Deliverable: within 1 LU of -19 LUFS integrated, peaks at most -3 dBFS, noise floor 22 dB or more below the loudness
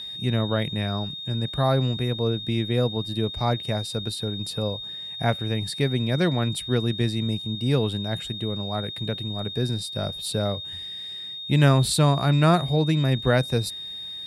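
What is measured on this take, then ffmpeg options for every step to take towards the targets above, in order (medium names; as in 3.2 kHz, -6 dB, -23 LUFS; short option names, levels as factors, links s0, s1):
steady tone 3.7 kHz; tone level -33 dBFS; loudness -25.0 LUFS; peak level -6.5 dBFS; loudness target -19.0 LUFS
-> -af "bandreject=f=3700:w=30"
-af "volume=2,alimiter=limit=0.708:level=0:latency=1"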